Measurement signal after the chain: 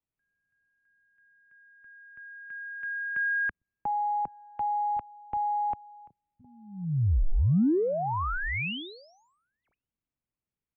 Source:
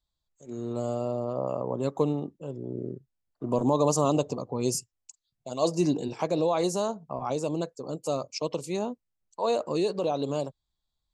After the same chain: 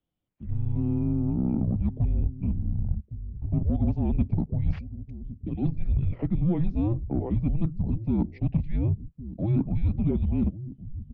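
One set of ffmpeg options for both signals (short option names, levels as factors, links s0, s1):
-filter_complex "[0:a]equalizer=f=125:t=o:w=1:g=-10,equalizer=f=250:t=o:w=1:g=10,equalizer=f=500:t=o:w=1:g=10,equalizer=f=1000:t=o:w=1:g=-4,equalizer=f=2000:t=o:w=1:g=-6,areverse,acompressor=threshold=0.0447:ratio=10,areverse,aeval=exprs='0.133*(cos(1*acos(clip(val(0)/0.133,-1,1)))-cos(1*PI/2))+0.00335*(cos(2*acos(clip(val(0)/0.133,-1,1)))-cos(2*PI/2))+0.0015*(cos(5*acos(clip(val(0)/0.133,-1,1)))-cos(5*PI/2))':c=same,acrossover=split=600[s0][s1];[s0]aecho=1:1:1111:0.299[s2];[s1]aeval=exprs='0.0398*(abs(mod(val(0)/0.0398+3,4)-2)-1)':c=same[s3];[s2][s3]amix=inputs=2:normalize=0,highpass=f=190:t=q:w=0.5412,highpass=f=190:t=q:w=1.307,lowpass=f=2900:t=q:w=0.5176,lowpass=f=2900:t=q:w=0.7071,lowpass=f=2900:t=q:w=1.932,afreqshift=-340,volume=2"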